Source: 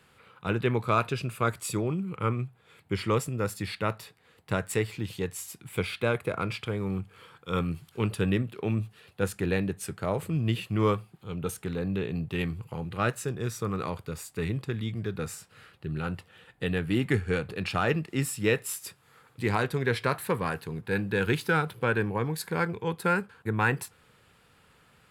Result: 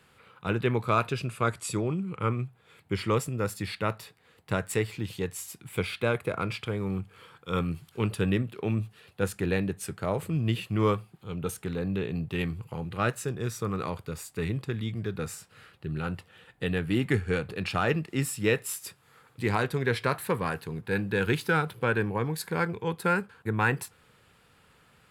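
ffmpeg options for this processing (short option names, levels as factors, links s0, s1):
-filter_complex "[0:a]asettb=1/sr,asplit=3[s0][s1][s2];[s0]atrim=end=1.274[s3];[s1]atrim=start=1.27:end=2.28,asetpts=PTS-STARTPTS,afade=t=in:d=0.004:c=qsin,afade=t=out:st=1.006:d=0.004:c=qsin,lowpass=f=11000:w=0.5412,lowpass=f=11000:w=1.3066[s4];[s2]atrim=start=2.276[s5];[s3][s4]acrossfade=d=0.004:c1=hsin:c2=qsin[s6];[s6][s5]acrossfade=d=0.004:c1=qsin:c2=hsin"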